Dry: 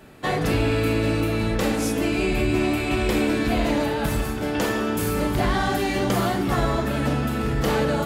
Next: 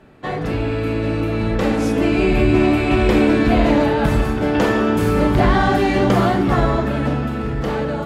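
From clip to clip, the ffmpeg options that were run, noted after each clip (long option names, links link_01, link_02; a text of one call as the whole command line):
ffmpeg -i in.wav -af "dynaudnorm=framelen=250:gausssize=13:maxgain=10dB,aemphasis=mode=reproduction:type=75kf" out.wav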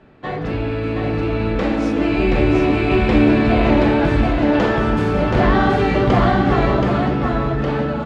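ffmpeg -i in.wav -af "lowpass=4600,aecho=1:1:726:0.668,volume=-1dB" out.wav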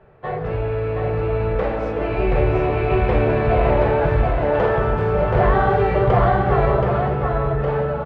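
ffmpeg -i in.wav -af "firequalizer=gain_entry='entry(140,0);entry(270,-18);entry(410,2);entry(3900,-13);entry(6500,-18)':delay=0.05:min_phase=1" out.wav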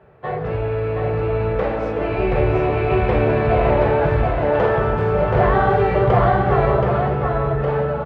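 ffmpeg -i in.wav -af "highpass=55,volume=1dB" out.wav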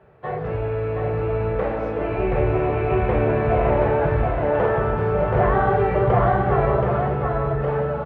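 ffmpeg -i in.wav -filter_complex "[0:a]acrossover=split=2800[link_01][link_02];[link_02]acompressor=threshold=-55dB:ratio=4:attack=1:release=60[link_03];[link_01][link_03]amix=inputs=2:normalize=0,volume=-2.5dB" out.wav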